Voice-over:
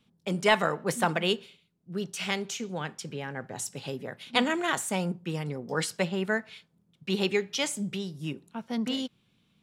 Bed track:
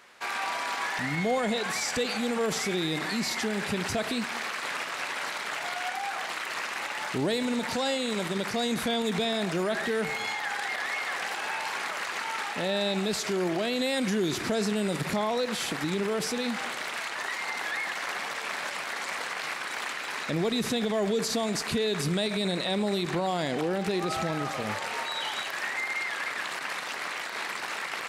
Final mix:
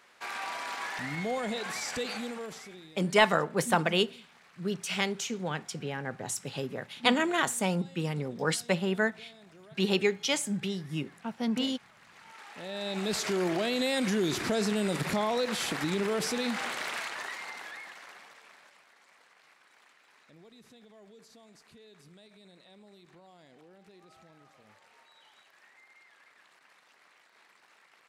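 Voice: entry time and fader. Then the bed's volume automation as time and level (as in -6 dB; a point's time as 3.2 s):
2.70 s, +0.5 dB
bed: 2.15 s -5.5 dB
3.02 s -26 dB
11.99 s -26 dB
13.15 s -1 dB
16.93 s -1 dB
18.93 s -28 dB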